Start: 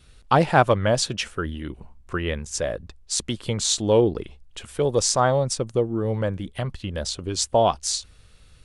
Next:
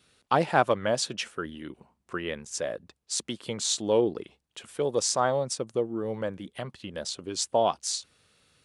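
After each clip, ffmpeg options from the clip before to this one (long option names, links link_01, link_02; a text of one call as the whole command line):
ffmpeg -i in.wav -af "highpass=190,volume=-5dB" out.wav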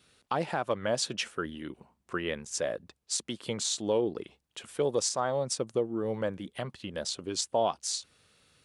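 ffmpeg -i in.wav -af "alimiter=limit=-17dB:level=0:latency=1:release=276" out.wav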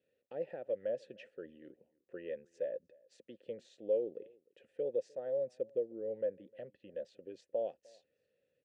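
ffmpeg -i in.wav -filter_complex "[0:a]asplit=3[link_01][link_02][link_03];[link_01]bandpass=frequency=530:width_type=q:width=8,volume=0dB[link_04];[link_02]bandpass=frequency=1840:width_type=q:width=8,volume=-6dB[link_05];[link_03]bandpass=frequency=2480:width_type=q:width=8,volume=-9dB[link_06];[link_04][link_05][link_06]amix=inputs=3:normalize=0,tiltshelf=frequency=630:gain=9.5,asplit=2[link_07][link_08];[link_08]adelay=303.2,volume=-26dB,highshelf=frequency=4000:gain=-6.82[link_09];[link_07][link_09]amix=inputs=2:normalize=0,volume=-2dB" out.wav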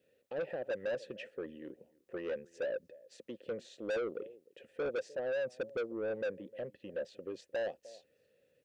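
ffmpeg -i in.wav -af "asoftclip=type=tanh:threshold=-40dB,volume=8dB" out.wav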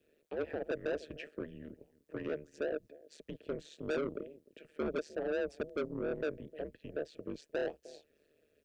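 ffmpeg -i in.wav -af "tremolo=f=150:d=0.889,afreqshift=-64,volume=4dB" out.wav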